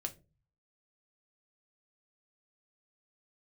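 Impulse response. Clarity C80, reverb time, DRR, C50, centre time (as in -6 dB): 24.5 dB, 0.30 s, 4.5 dB, 17.5 dB, 7 ms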